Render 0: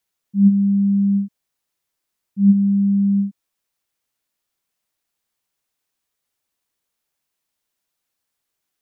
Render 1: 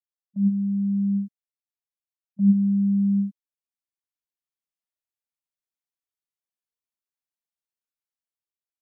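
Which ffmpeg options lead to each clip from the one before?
-af "agate=range=-20dB:threshold=-25dB:ratio=16:detection=peak,dynaudnorm=f=690:g=3:m=9.5dB,volume=-8.5dB"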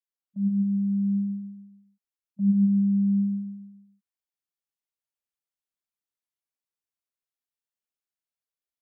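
-af "aecho=1:1:140|280|420|560|700:0.631|0.265|0.111|0.0467|0.0196,volume=-4.5dB"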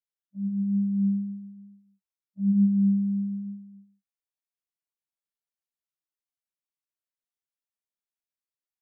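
-af "flanger=delay=4.1:depth=3.1:regen=57:speed=1.1:shape=triangular,afftfilt=real='re*1.73*eq(mod(b,3),0)':imag='im*1.73*eq(mod(b,3),0)':win_size=2048:overlap=0.75"

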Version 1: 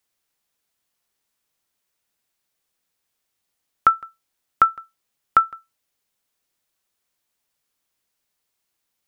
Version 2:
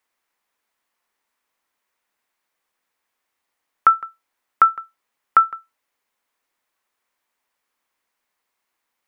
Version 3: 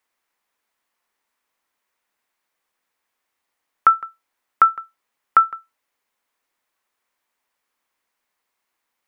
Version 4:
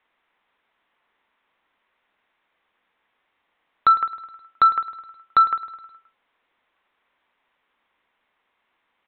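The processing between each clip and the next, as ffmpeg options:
-af "equalizer=f=125:t=o:w=1:g=-7,equalizer=f=250:t=o:w=1:g=5,equalizer=f=500:t=o:w=1:g=4,equalizer=f=1k:t=o:w=1:g=10,equalizer=f=2k:t=o:w=1:g=8,alimiter=level_in=-3dB:limit=-1dB:release=50:level=0:latency=1,volume=-1dB"
-af anull
-af "asoftclip=type=tanh:threshold=-18.5dB,aecho=1:1:105|210|315|420|525:0.168|0.094|0.0526|0.0295|0.0165,aresample=8000,aresample=44100,volume=8dB"

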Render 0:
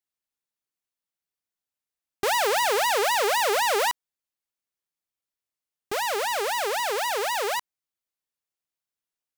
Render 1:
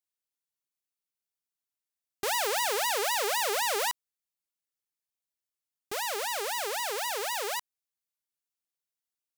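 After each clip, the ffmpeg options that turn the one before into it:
-af "highshelf=f=3.5k:g=7,volume=-7.5dB"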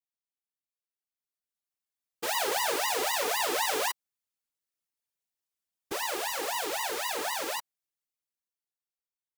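-af "dynaudnorm=f=280:g=11:m=11.5dB,afftfilt=real='hypot(re,im)*cos(2*PI*random(0))':imag='hypot(re,im)*sin(2*PI*random(1))':win_size=512:overlap=0.75,volume=-5.5dB"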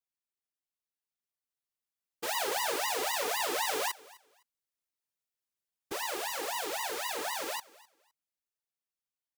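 -af "aecho=1:1:256|512:0.0794|0.0175,volume=-3dB"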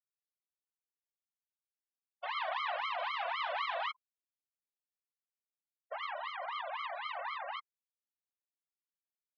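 -af "afftfilt=real='re*gte(hypot(re,im),0.0224)':imag='im*gte(hypot(re,im),0.0224)':win_size=1024:overlap=0.75,highpass=f=170:t=q:w=0.5412,highpass=f=170:t=q:w=1.307,lowpass=f=3.5k:t=q:w=0.5176,lowpass=f=3.5k:t=q:w=0.7071,lowpass=f=3.5k:t=q:w=1.932,afreqshift=240,volume=-2.5dB"

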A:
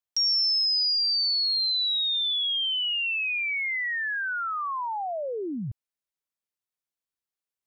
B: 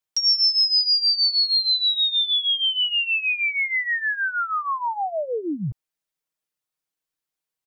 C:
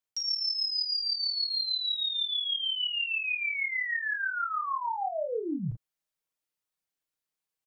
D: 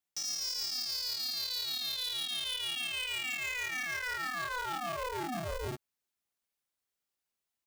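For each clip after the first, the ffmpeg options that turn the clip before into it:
-af "aecho=1:1:6.4:0.67,volume=3dB"
-af "areverse,acompressor=threshold=-26dB:ratio=6,areverse,aecho=1:1:36|46:0.596|0.158,volume=-4dB"
-af "asoftclip=type=tanh:threshold=-33.5dB,aeval=exprs='val(0)*sgn(sin(2*PI*250*n/s))':c=same"

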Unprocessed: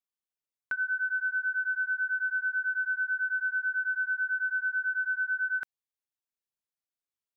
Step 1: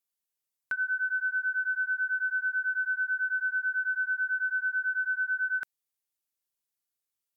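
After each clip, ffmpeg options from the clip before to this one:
-af "aemphasis=mode=production:type=cd"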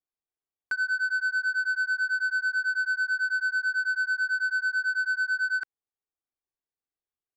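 -af "aecho=1:1:2.6:0.43,adynamicsmooth=sensitivity=4:basefreq=1.5k"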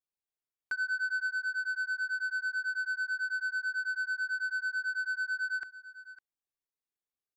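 -af "aecho=1:1:554:0.15,volume=-5dB"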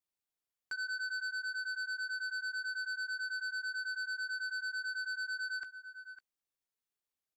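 -filter_complex "[0:a]acrossover=split=2700[a][b];[a]asoftclip=type=tanh:threshold=-37dB[c];[b]asplit=2[d][e];[e]adelay=15,volume=-5dB[f];[d][f]amix=inputs=2:normalize=0[g];[c][g]amix=inputs=2:normalize=0"

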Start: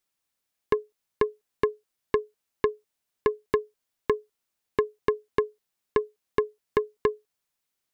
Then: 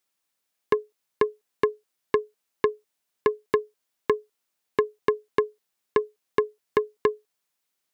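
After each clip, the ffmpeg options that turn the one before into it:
-af "highpass=f=190:p=1,volume=2.5dB"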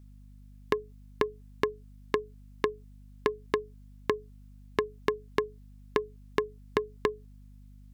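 -af "acompressor=threshold=-26dB:ratio=6,aeval=exprs='val(0)+0.00251*(sin(2*PI*50*n/s)+sin(2*PI*2*50*n/s)/2+sin(2*PI*3*50*n/s)/3+sin(2*PI*4*50*n/s)/4+sin(2*PI*5*50*n/s)/5)':c=same,volume=2dB"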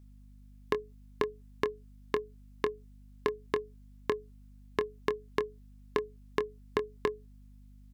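-filter_complex "[0:a]asplit=2[a][b];[b]adelay=24,volume=-11.5dB[c];[a][c]amix=inputs=2:normalize=0,volume=-3dB"

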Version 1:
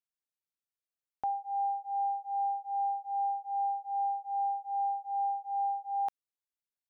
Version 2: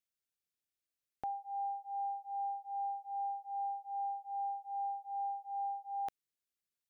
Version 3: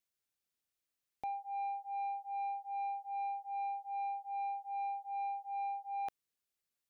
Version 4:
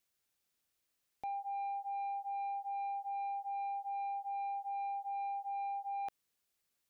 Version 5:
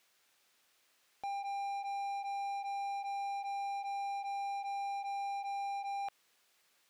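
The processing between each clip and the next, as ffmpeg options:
-af "equalizer=f=930:t=o:w=0.77:g=-11,volume=1.5dB"
-af "asoftclip=type=tanh:threshold=-35.5dB,volume=2dB"
-af "alimiter=level_in=18dB:limit=-24dB:level=0:latency=1,volume=-18dB,volume=6dB"
-filter_complex "[0:a]asplit=2[a][b];[b]highpass=f=720:p=1,volume=23dB,asoftclip=type=tanh:threshold=-35.5dB[c];[a][c]amix=inputs=2:normalize=0,lowpass=f=3.3k:p=1,volume=-6dB"

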